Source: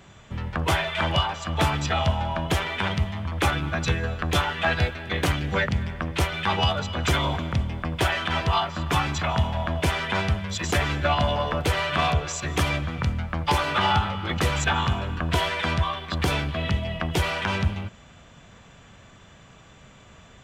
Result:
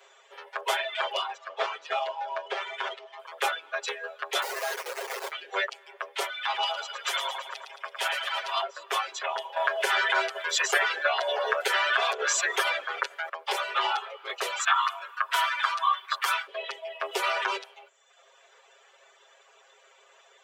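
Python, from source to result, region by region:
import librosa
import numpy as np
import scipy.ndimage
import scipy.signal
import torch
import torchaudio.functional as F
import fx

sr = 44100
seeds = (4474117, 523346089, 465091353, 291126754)

y = fx.chain(x, sr, fx.median_filter(points=9),
    fx.lowpass(hz=5700.0, slope=24), at=(1.37, 3.19))
y = fx.chain(y, sr, fx.delta_mod(bps=16000, step_db=-30.5),
    fx.schmitt(flips_db=-34.5), at=(4.42, 5.32))
y = fx.chain(y, sr, fx.highpass(hz=800.0, slope=12),
    fx.echo_feedback(ms=110, feedback_pct=60, wet_db=-5.0), at=(6.3, 8.62))
y = fx.chain(y, sr, fx.peak_eq(hz=1600.0, db=7.5, octaves=0.51),
    fx.env_flatten(amount_pct=70), at=(9.56, 13.29))
y = fx.chain(y, sr, fx.highpass_res(hz=1200.0, q=3.7),
    fx.high_shelf(hz=11000.0, db=11.0), at=(14.59, 16.47))
y = fx.chain(y, sr, fx.notch(hz=3200.0, q=19.0),
    fx.small_body(hz=(330.0, 1200.0), ring_ms=25, db=7),
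    fx.env_flatten(amount_pct=50), at=(17.02, 17.57))
y = scipy.signal.sosfilt(scipy.signal.butter(12, 400.0, 'highpass', fs=sr, output='sos'), y)
y = fx.dereverb_blind(y, sr, rt60_s=0.91)
y = y + 0.99 * np.pad(y, (int(7.4 * sr / 1000.0), 0))[:len(y)]
y = F.gain(torch.from_numpy(y), -5.5).numpy()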